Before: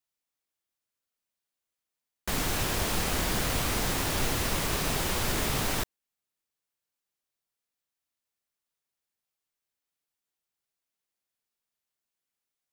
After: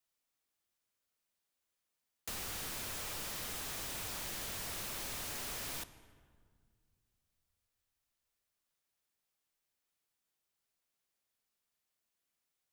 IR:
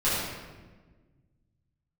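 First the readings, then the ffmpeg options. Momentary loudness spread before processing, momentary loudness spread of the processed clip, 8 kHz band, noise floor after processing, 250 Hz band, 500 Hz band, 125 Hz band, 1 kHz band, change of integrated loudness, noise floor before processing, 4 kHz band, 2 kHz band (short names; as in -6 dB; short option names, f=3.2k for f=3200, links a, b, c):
3 LU, 2 LU, -9.5 dB, under -85 dBFS, -18.5 dB, -16.5 dB, -19.0 dB, -15.0 dB, -11.5 dB, under -85 dBFS, -11.0 dB, -13.0 dB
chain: -filter_complex "[0:a]aeval=exprs='0.0237*(abs(mod(val(0)/0.0237+3,4)-2)-1)':c=same,acrossover=split=110|970[a][b][c];[a]acompressor=threshold=-53dB:ratio=4[d];[b]acompressor=threshold=-52dB:ratio=4[e];[c]acompressor=threshold=-42dB:ratio=4[f];[d][e][f]amix=inputs=3:normalize=0,asplit=2[g][h];[1:a]atrim=start_sample=2205,asetrate=28665,aresample=44100[i];[h][i]afir=irnorm=-1:irlink=0,volume=-29dB[j];[g][j]amix=inputs=2:normalize=0,volume=1dB"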